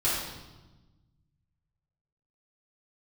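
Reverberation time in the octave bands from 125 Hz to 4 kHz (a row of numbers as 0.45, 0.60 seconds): 2.3, 1.7, 1.2, 1.1, 0.95, 1.0 seconds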